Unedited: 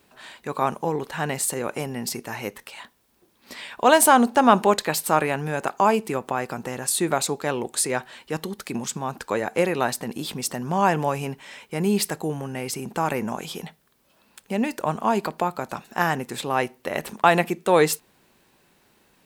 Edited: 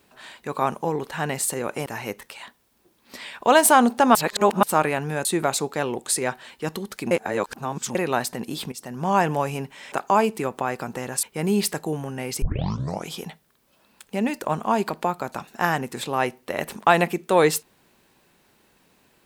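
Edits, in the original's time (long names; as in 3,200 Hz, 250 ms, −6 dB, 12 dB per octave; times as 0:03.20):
0:01.86–0:02.23: remove
0:04.52–0:05.00: reverse
0:05.62–0:06.93: move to 0:11.60
0:08.79–0:09.63: reverse
0:10.40–0:10.77: fade in, from −16 dB
0:12.79: tape start 0.66 s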